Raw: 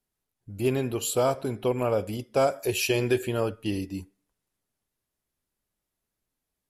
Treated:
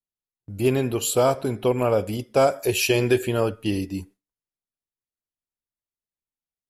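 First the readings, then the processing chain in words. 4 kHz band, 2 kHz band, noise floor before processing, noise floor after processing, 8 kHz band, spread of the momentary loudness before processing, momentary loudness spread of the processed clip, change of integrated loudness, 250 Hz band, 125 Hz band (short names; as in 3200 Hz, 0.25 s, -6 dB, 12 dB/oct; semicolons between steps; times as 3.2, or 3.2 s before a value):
+4.5 dB, +4.5 dB, -85 dBFS, under -85 dBFS, +4.5 dB, 7 LU, 7 LU, +4.5 dB, +4.5 dB, +4.5 dB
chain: gate with hold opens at -41 dBFS; gain +4.5 dB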